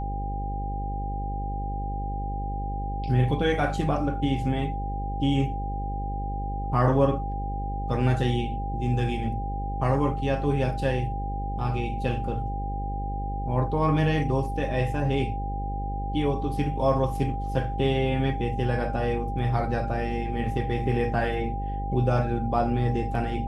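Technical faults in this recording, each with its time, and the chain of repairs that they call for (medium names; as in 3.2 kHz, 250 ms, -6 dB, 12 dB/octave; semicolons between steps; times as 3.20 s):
buzz 50 Hz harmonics 11 -31 dBFS
whine 800 Hz -33 dBFS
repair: band-stop 800 Hz, Q 30; de-hum 50 Hz, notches 11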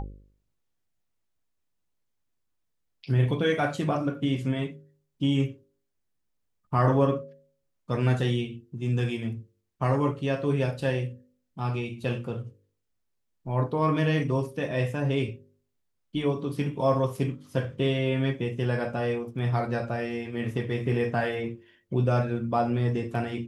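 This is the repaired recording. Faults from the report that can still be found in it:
nothing left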